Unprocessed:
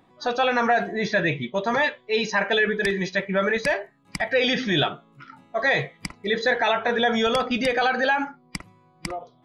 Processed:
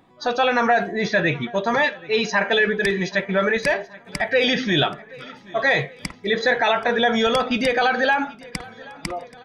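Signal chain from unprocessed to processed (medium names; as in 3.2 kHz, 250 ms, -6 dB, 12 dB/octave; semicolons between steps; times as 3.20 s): feedback delay 779 ms, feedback 54%, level -22 dB; trim +2.5 dB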